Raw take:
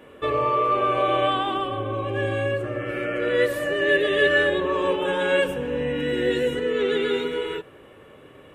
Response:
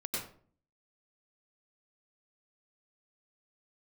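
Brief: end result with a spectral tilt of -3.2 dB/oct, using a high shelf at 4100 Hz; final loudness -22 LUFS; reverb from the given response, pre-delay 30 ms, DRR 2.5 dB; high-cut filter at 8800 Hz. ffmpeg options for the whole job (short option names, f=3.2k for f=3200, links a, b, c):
-filter_complex "[0:a]lowpass=8.8k,highshelf=f=4.1k:g=-5,asplit=2[a][b];[1:a]atrim=start_sample=2205,adelay=30[c];[b][c]afir=irnorm=-1:irlink=0,volume=-5.5dB[d];[a][d]amix=inputs=2:normalize=0,volume=-1dB"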